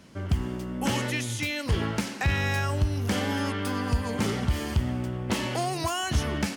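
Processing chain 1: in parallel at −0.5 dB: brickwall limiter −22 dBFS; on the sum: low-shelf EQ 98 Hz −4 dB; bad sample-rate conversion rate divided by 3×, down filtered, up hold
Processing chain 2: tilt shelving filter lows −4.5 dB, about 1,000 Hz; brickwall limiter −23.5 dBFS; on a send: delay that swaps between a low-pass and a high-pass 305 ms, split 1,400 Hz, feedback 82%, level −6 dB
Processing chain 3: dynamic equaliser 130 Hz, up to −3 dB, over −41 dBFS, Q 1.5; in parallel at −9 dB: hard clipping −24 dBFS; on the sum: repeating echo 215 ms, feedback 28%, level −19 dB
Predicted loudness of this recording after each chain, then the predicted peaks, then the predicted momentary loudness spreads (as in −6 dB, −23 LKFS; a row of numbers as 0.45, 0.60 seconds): −25.0, −31.5, −26.5 LKFS; −12.5, −19.0, −13.5 dBFS; 3, 3, 4 LU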